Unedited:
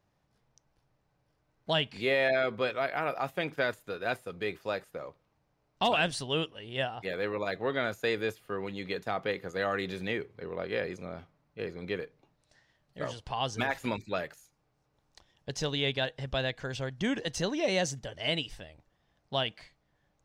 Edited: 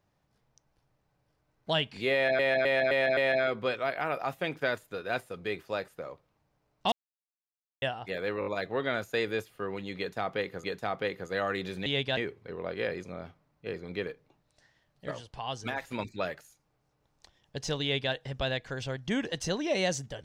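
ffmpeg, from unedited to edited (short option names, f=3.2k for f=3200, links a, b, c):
-filter_complex "[0:a]asplit=15[a][b][c][d][e][f][g][h][i][j][k][l][m][n][o];[a]atrim=end=2.392[p];[b]atrim=start=2.128:end=2.392[q];[c]atrim=start=2.128:end=2.392[r];[d]atrim=start=2.128:end=2.392[s];[e]atrim=start=2.128:end=5.88,asetpts=PTS-STARTPTS,afade=t=out:st=3.748:d=0.004:c=hsin[t];[f]atrim=start=5.88:end=6.78,asetpts=PTS-STARTPTS,volume=0[u];[g]atrim=start=6.78:end=7.382,asetpts=PTS-STARTPTS,afade=t=in:d=0.004:c=hsin[v];[h]atrim=start=7.358:end=7.382[w];[i]atrim=start=7.358:end=7.382[x];[j]atrim=start=7.358:end=9.542[y];[k]atrim=start=8.878:end=10.102[z];[l]atrim=start=15.748:end=16.062[aa];[m]atrim=start=10.098:end=13.042[ab];[n]atrim=start=13.038:end=13.922,asetpts=PTS-STARTPTS,volume=-4dB[ac];[o]atrim=start=13.918[ad];[p][q]acrossfade=d=0.004:c1=hsin:c2=hsin[ae];[ae][r]acrossfade=d=0.004:c1=hsin:c2=hsin[af];[af][s]acrossfade=d=0.004:c1=hsin:c2=hsin[ag];[t][u][v]concat=n=3:v=0:a=1[ah];[ag][ah]acrossfade=d=0.004:c1=hsin:c2=hsin[ai];[ai][w]acrossfade=d=0.004:c1=hsin:c2=hsin[aj];[aj][x]acrossfade=d=0.004:c1=hsin:c2=hsin[ak];[ak][y]acrossfade=d=0.004:c1=hsin:c2=hsin[al];[al][z]acrossfade=d=0.004:c1=hsin:c2=hsin[am];[am][aa]acrossfade=d=0.004:c1=hsin:c2=hsin[an];[an][ab]acrossfade=d=0.004:c1=hsin:c2=hsin[ao];[ao][ac]acrossfade=d=0.004:c1=hsin:c2=hsin[ap];[ap][ad]acrossfade=d=0.004:c1=hsin:c2=hsin"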